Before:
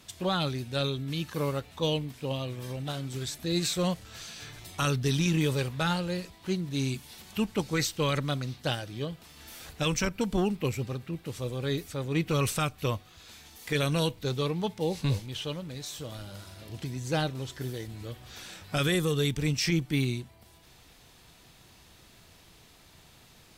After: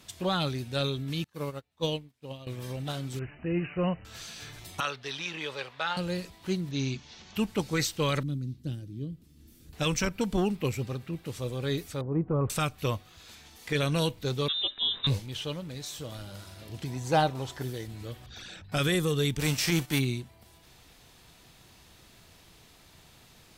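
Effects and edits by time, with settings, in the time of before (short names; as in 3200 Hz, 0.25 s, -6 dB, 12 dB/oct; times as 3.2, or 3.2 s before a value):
1.24–2.47 upward expander 2.5:1, over -44 dBFS
3.19–4.05 brick-wall FIR low-pass 3000 Hz
4.8–5.97 three-band isolator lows -22 dB, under 510 Hz, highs -21 dB, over 4900 Hz
6.71–7.36 elliptic low-pass 6400 Hz, stop band 50 dB
8.23–9.73 EQ curve 310 Hz 0 dB, 740 Hz -27 dB, 13000 Hz -12 dB
12.01–12.5 LPF 1100 Hz 24 dB/oct
13.35–13.95 high shelf 9600 Hz -8 dB
14.48–15.07 inverted band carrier 3800 Hz
16.87–17.63 bell 820 Hz +10.5 dB 1 oct
18.26–18.72 formant sharpening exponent 2
19.39–19.98 spectral whitening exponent 0.6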